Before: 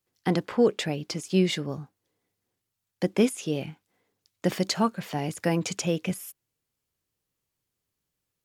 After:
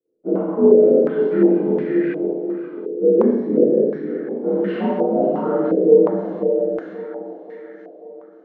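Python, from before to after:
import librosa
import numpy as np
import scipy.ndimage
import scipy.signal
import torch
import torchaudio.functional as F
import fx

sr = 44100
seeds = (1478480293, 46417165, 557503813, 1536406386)

p1 = fx.partial_stretch(x, sr, pct=85)
p2 = fx.hum_notches(p1, sr, base_hz=60, count=3)
p3 = fx.small_body(p2, sr, hz=(330.0, 480.0), ring_ms=20, db=15)
p4 = p3 + fx.echo_split(p3, sr, split_hz=300.0, low_ms=279, high_ms=535, feedback_pct=52, wet_db=-4, dry=0)
p5 = fx.rev_schroeder(p4, sr, rt60_s=1.1, comb_ms=29, drr_db=-6.5)
p6 = fx.filter_held_lowpass(p5, sr, hz=2.8, low_hz=470.0, high_hz=1800.0)
y = p6 * librosa.db_to_amplitude(-12.5)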